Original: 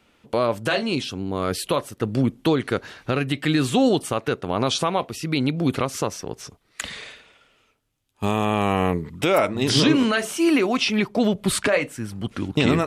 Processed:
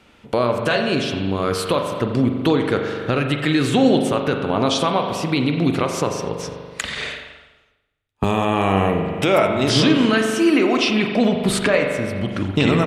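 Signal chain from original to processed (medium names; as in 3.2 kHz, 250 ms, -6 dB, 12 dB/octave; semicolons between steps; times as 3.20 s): treble shelf 11 kHz -10 dB; delay 87 ms -21.5 dB; spring tank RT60 1.6 s, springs 41 ms, chirp 20 ms, DRR 4 dB; in parallel at +3 dB: compression, threshold -32 dBFS, peak gain reduction 19 dB; 6.95–8.24 s: on the sum: three bands expanded up and down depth 70%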